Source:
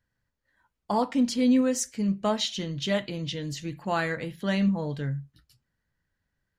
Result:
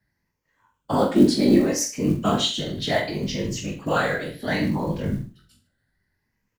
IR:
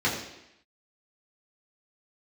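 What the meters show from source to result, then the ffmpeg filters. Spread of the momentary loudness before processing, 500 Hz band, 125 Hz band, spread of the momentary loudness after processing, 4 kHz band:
11 LU, +6.0 dB, +4.5 dB, 11 LU, +5.5 dB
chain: -filter_complex "[0:a]afftfilt=real='re*pow(10,10/40*sin(2*PI*(0.77*log(max(b,1)*sr/1024/100)/log(2)-(0.66)*(pts-256)/sr)))':imag='im*pow(10,10/40*sin(2*PI*(0.77*log(max(b,1)*sr/1024/100)/log(2)-(0.66)*(pts-256)/sr)))':win_size=1024:overlap=0.75,afreqshift=25,afftfilt=real='hypot(re,im)*cos(2*PI*random(0))':imag='hypot(re,im)*sin(2*PI*random(1))':win_size=512:overlap=0.75,acrusher=bits=8:mode=log:mix=0:aa=0.000001,asplit=2[link_01][link_02];[link_02]adelay=46,volume=-11dB[link_03];[link_01][link_03]amix=inputs=2:normalize=0,aecho=1:1:20|44|72.8|107.4|148.8:0.631|0.398|0.251|0.158|0.1,volume=7.5dB"

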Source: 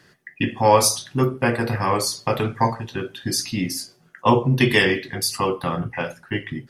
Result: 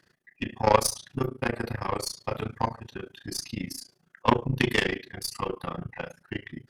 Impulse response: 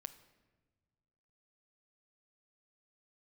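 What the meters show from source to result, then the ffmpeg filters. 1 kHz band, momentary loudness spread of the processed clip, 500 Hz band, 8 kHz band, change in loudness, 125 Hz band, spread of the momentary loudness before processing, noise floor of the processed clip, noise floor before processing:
−7.0 dB, 15 LU, −8.0 dB, −10.0 dB, −8.0 dB, −9.5 dB, 13 LU, −70 dBFS, −56 dBFS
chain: -af "aeval=exprs='0.75*(cos(1*acos(clip(val(0)/0.75,-1,1)))-cos(1*PI/2))+0.15*(cos(3*acos(clip(val(0)/0.75,-1,1)))-cos(3*PI/2))+0.0106*(cos(8*acos(clip(val(0)/0.75,-1,1)))-cos(8*PI/2))':channel_layout=same,tremolo=f=28:d=0.947,volume=1.5dB"

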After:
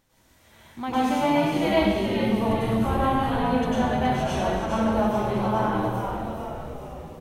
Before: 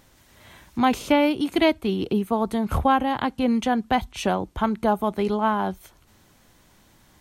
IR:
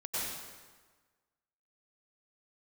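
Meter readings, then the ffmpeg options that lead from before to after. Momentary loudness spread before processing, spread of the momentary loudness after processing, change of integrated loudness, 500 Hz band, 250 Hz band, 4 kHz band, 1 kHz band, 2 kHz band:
6 LU, 11 LU, −1.0 dB, +0.5 dB, −1.0 dB, −2.0 dB, −1.0 dB, −1.0 dB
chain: -filter_complex "[0:a]asplit=9[link_01][link_02][link_03][link_04][link_05][link_06][link_07][link_08][link_09];[link_02]adelay=419,afreqshift=-93,volume=-5.5dB[link_10];[link_03]adelay=838,afreqshift=-186,volume=-9.9dB[link_11];[link_04]adelay=1257,afreqshift=-279,volume=-14.4dB[link_12];[link_05]adelay=1676,afreqshift=-372,volume=-18.8dB[link_13];[link_06]adelay=2095,afreqshift=-465,volume=-23.2dB[link_14];[link_07]adelay=2514,afreqshift=-558,volume=-27.7dB[link_15];[link_08]adelay=2933,afreqshift=-651,volume=-32.1dB[link_16];[link_09]adelay=3352,afreqshift=-744,volume=-36.6dB[link_17];[link_01][link_10][link_11][link_12][link_13][link_14][link_15][link_16][link_17]amix=inputs=9:normalize=0[link_18];[1:a]atrim=start_sample=2205[link_19];[link_18][link_19]afir=irnorm=-1:irlink=0,volume=-7dB"

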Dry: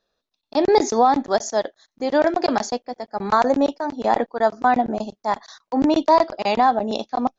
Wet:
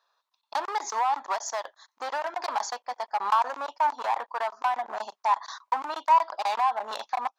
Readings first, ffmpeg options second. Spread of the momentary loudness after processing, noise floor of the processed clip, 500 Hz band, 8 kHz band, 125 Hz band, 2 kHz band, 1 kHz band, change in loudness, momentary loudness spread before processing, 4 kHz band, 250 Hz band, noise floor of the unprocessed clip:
11 LU, −81 dBFS, −16.0 dB, can't be measured, below −30 dB, −6.0 dB, −4.5 dB, −7.5 dB, 10 LU, −7.0 dB, −30.5 dB, −80 dBFS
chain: -af "acompressor=threshold=-23dB:ratio=10,asoftclip=type=hard:threshold=-25dB,highpass=frequency=990:width_type=q:width=5"

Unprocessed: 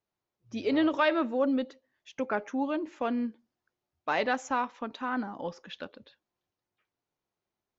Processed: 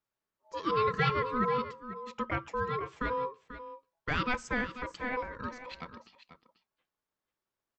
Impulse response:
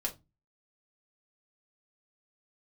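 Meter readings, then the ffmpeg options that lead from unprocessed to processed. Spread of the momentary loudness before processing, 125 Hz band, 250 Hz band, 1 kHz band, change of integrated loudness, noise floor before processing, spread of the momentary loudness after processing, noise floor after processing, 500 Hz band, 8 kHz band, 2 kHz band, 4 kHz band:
15 LU, +13.5 dB, −8.5 dB, +0.5 dB, −2.5 dB, below −85 dBFS, 16 LU, below −85 dBFS, −3.5 dB, can't be measured, 0.0 dB, −1.5 dB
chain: -af "aeval=exprs='val(0)*sin(2*PI*750*n/s)':channel_layout=same,aecho=1:1:489:0.237"

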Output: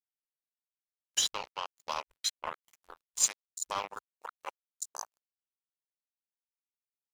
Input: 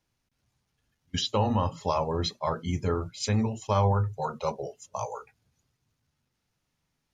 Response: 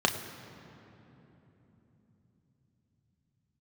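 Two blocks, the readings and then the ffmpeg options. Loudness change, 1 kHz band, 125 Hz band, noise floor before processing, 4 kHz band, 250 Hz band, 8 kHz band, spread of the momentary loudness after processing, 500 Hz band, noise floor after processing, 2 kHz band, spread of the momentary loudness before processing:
−5.0 dB, −9.5 dB, below −35 dB, −80 dBFS, −0.5 dB, −29.0 dB, +9.5 dB, 18 LU, −18.0 dB, below −85 dBFS, −1.5 dB, 11 LU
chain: -af "highpass=1300,aecho=1:1:736:0.106,aexciter=amount=6.2:drive=8.9:freq=7200,acrusher=bits=4:mix=0:aa=0.5,afwtdn=0.00501"

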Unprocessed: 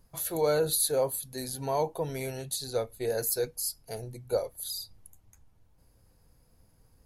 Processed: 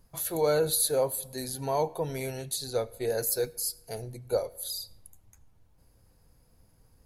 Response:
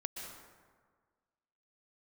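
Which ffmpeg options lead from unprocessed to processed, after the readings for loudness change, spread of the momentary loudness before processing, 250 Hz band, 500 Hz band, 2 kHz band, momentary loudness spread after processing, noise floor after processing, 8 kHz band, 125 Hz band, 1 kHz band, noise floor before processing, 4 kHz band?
+1.0 dB, 11 LU, +1.0 dB, +1.0 dB, +1.0 dB, 11 LU, −63 dBFS, +1.0 dB, +0.5 dB, +1.0 dB, −64 dBFS, +0.5 dB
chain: -filter_complex "[0:a]asplit=2[link_01][link_02];[1:a]atrim=start_sample=2205,asetrate=74970,aresample=44100[link_03];[link_02][link_03]afir=irnorm=-1:irlink=0,volume=-13.5dB[link_04];[link_01][link_04]amix=inputs=2:normalize=0"

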